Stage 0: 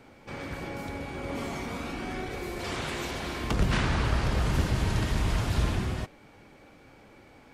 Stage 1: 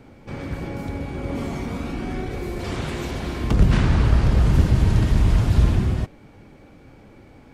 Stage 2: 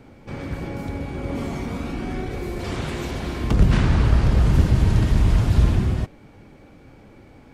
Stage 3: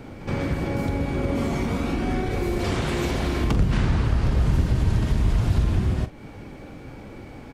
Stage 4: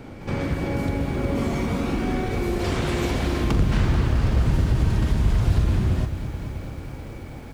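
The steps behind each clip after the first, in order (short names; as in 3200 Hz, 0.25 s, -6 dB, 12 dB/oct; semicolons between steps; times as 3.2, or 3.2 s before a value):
low shelf 400 Hz +11 dB
nothing audible
compressor 2.5:1, threshold -30 dBFS, peak gain reduction 14 dB; doubler 43 ms -12.5 dB; pre-echo 74 ms -16.5 dB; gain +7 dB
lo-fi delay 0.217 s, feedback 80%, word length 8-bit, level -12 dB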